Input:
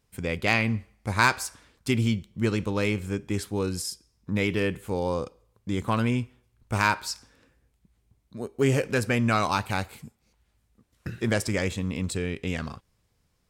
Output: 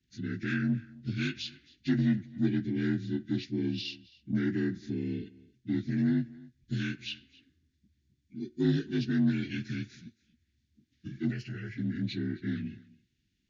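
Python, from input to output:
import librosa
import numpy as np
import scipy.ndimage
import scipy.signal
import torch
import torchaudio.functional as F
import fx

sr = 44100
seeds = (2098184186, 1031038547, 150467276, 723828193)

p1 = fx.partial_stretch(x, sr, pct=80)
p2 = scipy.signal.sosfilt(scipy.signal.ellip(3, 1.0, 40, [340.0, 1700.0], 'bandstop', fs=sr, output='sos'), p1)
p3 = fx.small_body(p2, sr, hz=(250.0, 3500.0), ring_ms=20, db=7)
p4 = 10.0 ** (-21.5 / 20.0) * np.tanh(p3 / 10.0 ** (-21.5 / 20.0))
p5 = p3 + (p4 * 10.0 ** (-8.0 / 20.0))
p6 = fx.fixed_phaser(p5, sr, hz=1000.0, stages=6, at=(11.3, 11.77), fade=0.02)
p7 = p6 + fx.echo_single(p6, sr, ms=268, db=-22.0, dry=0)
y = p7 * 10.0 ** (-7.0 / 20.0)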